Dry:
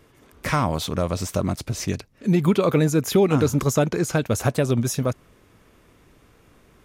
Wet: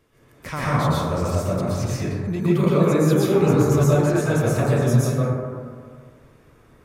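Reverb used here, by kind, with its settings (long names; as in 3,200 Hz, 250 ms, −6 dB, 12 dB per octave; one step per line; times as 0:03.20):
dense smooth reverb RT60 1.9 s, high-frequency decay 0.25×, pre-delay 105 ms, DRR −9 dB
level −8.5 dB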